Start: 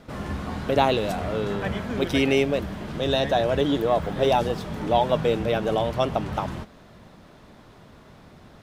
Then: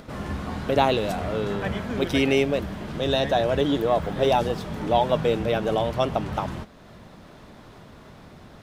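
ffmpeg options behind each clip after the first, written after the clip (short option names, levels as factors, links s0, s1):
-af "acompressor=mode=upward:threshold=0.01:ratio=2.5"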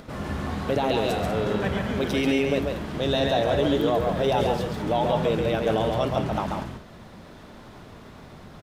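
-filter_complex "[0:a]alimiter=limit=0.178:level=0:latency=1:release=11,asplit=2[s0][s1];[s1]aecho=0:1:137|192.4:0.631|0.282[s2];[s0][s2]amix=inputs=2:normalize=0"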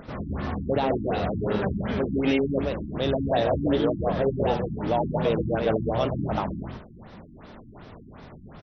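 -af "afftfilt=real='re*lt(b*sr/1024,320*pow(6300/320,0.5+0.5*sin(2*PI*2.7*pts/sr)))':imag='im*lt(b*sr/1024,320*pow(6300/320,0.5+0.5*sin(2*PI*2.7*pts/sr)))':win_size=1024:overlap=0.75"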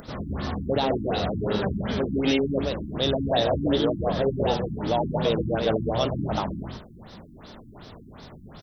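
-af "aexciter=amount=4.4:drive=2.9:freq=3400"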